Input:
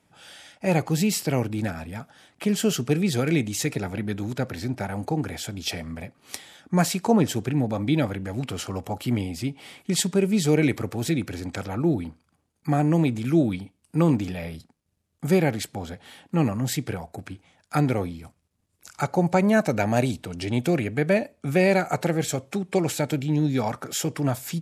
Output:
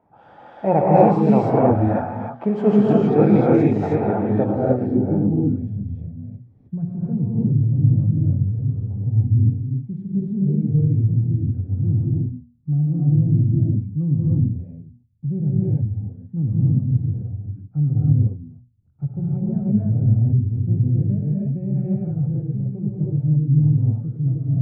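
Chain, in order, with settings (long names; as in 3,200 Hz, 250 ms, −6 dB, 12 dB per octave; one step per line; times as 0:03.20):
mains-hum notches 60/120/180/240 Hz
low-pass filter sweep 860 Hz → 120 Hz, 0:04.22–0:05.70
reverb whose tail is shaped and stops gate 340 ms rising, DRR −6 dB
level +1.5 dB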